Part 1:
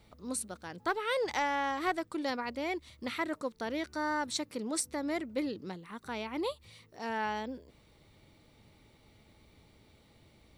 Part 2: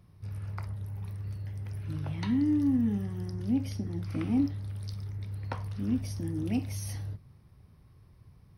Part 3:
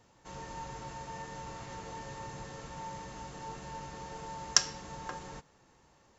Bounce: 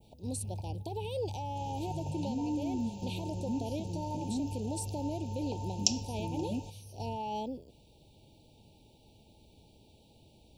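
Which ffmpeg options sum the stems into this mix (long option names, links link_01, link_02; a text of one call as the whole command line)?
ffmpeg -i stem1.wav -i stem2.wav -i stem3.wav -filter_complex "[0:a]alimiter=level_in=3.5dB:limit=-24dB:level=0:latency=1,volume=-3.5dB,volume=1.5dB,asplit=2[link_01][link_02];[1:a]volume=-2dB[link_03];[2:a]adelay=1300,volume=-3dB[link_04];[link_02]apad=whole_len=378208[link_05];[link_03][link_05]sidechaingate=range=-12dB:threshold=-47dB:ratio=16:detection=peak[link_06];[link_01][link_06]amix=inputs=2:normalize=0,adynamicequalizer=threshold=0.00178:dfrequency=4200:dqfactor=0.88:tfrequency=4200:tqfactor=0.88:attack=5:release=100:ratio=0.375:range=2.5:mode=cutabove:tftype=bell,alimiter=level_in=3dB:limit=-24dB:level=0:latency=1:release=89,volume=-3dB,volume=0dB[link_07];[link_04][link_07]amix=inputs=2:normalize=0,asuperstop=centerf=1500:order=20:qfactor=0.98,equalizer=frequency=1200:width_type=o:width=0.25:gain=14" out.wav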